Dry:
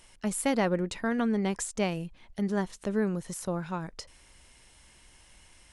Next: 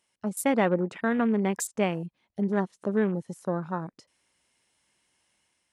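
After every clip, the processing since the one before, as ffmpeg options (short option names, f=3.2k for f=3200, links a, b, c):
-af "dynaudnorm=f=100:g=7:m=3.5dB,highpass=150,afwtdn=0.0141"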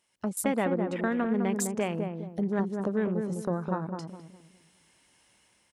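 -filter_complex "[0:a]acompressor=threshold=-41dB:ratio=2,asplit=2[a][b];[b]adelay=206,lowpass=f=800:p=1,volume=-3.5dB,asplit=2[c][d];[d]adelay=206,lowpass=f=800:p=1,volume=0.39,asplit=2[e][f];[f]adelay=206,lowpass=f=800:p=1,volume=0.39,asplit=2[g][h];[h]adelay=206,lowpass=f=800:p=1,volume=0.39,asplit=2[i][j];[j]adelay=206,lowpass=f=800:p=1,volume=0.39[k];[c][e][g][i][k]amix=inputs=5:normalize=0[l];[a][l]amix=inputs=2:normalize=0,dynaudnorm=f=110:g=3:m=7dB"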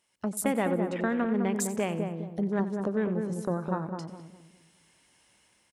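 -af "aecho=1:1:91|182|273|364|455:0.15|0.0808|0.0436|0.0236|0.0127"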